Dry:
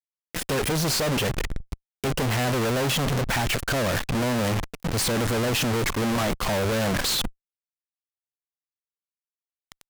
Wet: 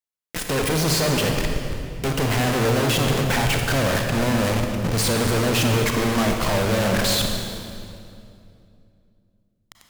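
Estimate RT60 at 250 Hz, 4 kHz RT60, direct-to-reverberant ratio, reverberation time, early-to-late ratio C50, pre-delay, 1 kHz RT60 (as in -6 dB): 3.2 s, 1.9 s, 2.5 dB, 2.5 s, 3.5 dB, 32 ms, 2.4 s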